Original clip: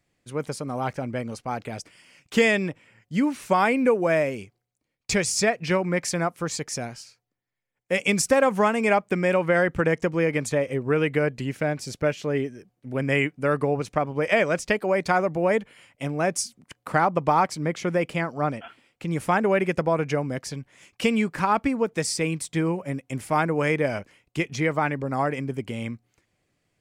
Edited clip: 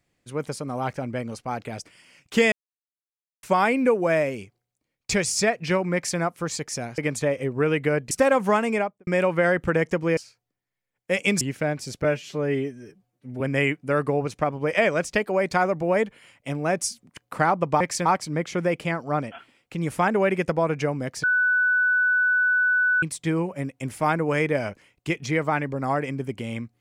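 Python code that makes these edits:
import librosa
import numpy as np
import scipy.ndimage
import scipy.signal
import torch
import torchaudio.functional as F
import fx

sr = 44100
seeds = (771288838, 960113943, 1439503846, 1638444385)

y = fx.studio_fade_out(x, sr, start_s=8.75, length_s=0.43)
y = fx.edit(y, sr, fx.silence(start_s=2.52, length_s=0.91),
    fx.duplicate(start_s=5.94, length_s=0.25, to_s=17.35),
    fx.swap(start_s=6.98, length_s=1.24, other_s=10.28, other_length_s=1.13),
    fx.stretch_span(start_s=12.04, length_s=0.91, factor=1.5),
    fx.bleep(start_s=20.53, length_s=1.79, hz=1490.0, db=-17.5), tone=tone)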